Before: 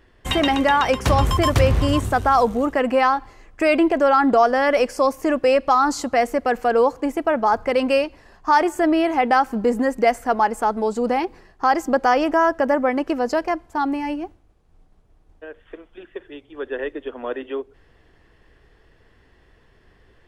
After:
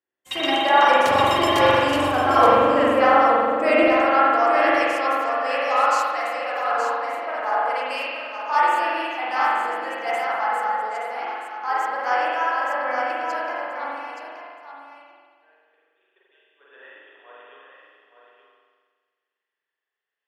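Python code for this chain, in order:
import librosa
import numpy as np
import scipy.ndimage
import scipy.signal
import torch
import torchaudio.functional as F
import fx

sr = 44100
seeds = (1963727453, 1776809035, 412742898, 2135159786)

y = fx.highpass(x, sr, hz=fx.steps((0.0, 330.0), (3.83, 920.0)), slope=12)
y = y + 10.0 ** (-5.0 / 20.0) * np.pad(y, (int(874 * sr / 1000.0), 0))[:len(y)]
y = fx.rev_spring(y, sr, rt60_s=2.6, pass_ms=(43,), chirp_ms=65, drr_db=-7.0)
y = fx.band_widen(y, sr, depth_pct=70)
y = F.gain(torch.from_numpy(y), -6.5).numpy()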